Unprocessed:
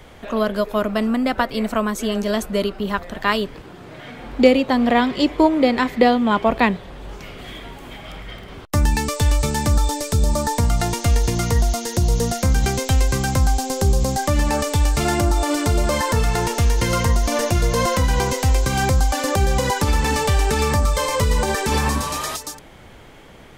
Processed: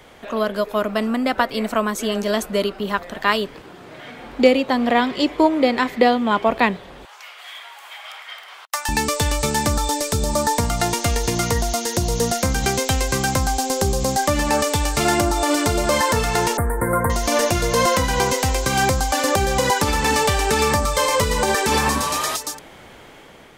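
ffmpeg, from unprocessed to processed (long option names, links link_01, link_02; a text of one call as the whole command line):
ffmpeg -i in.wav -filter_complex "[0:a]asettb=1/sr,asplit=3[link_01][link_02][link_03];[link_01]atrim=end=7.054[link_04];[link_02]atrim=start=7.05:end=8.89,asetpts=PTS-STARTPTS,afade=type=in:duration=0.004:curve=qsin,afade=type=out:start_time=1.836:duration=0.004:curve=qsin,highpass=frequency=810:width=0.5412,highpass=frequency=810:width=1.3066[link_05];[link_03]atrim=start=8.886[link_06];[link_04][link_05]acrossfade=duration=0.004:curve1=hsin:curve2=qsin[link_07];[link_07][link_06]acrossfade=duration=0.004:curve1=qsin:curve2=hsin,asettb=1/sr,asplit=3[link_08][link_09][link_10];[link_08]atrim=end=16.574[link_11];[link_09]atrim=start=16.57:end=17.1,asetpts=PTS-STARTPTS,afade=type=in:duration=0.004:curve=qsin,afade=type=out:start_time=0.526:duration=0.004:curve=qsin,asuperstop=centerf=4200:order=12:qfactor=0.6[link_12];[link_10]atrim=start=17.096[link_13];[link_11][link_12]acrossfade=duration=0.004:curve1=hsin:curve2=qsin[link_14];[link_14][link_13]acrossfade=duration=0.004:curve1=qsin:curve2=hsin,dynaudnorm=framelen=350:gausssize=5:maxgain=4dB,lowshelf=frequency=150:gain=-11.5" out.wav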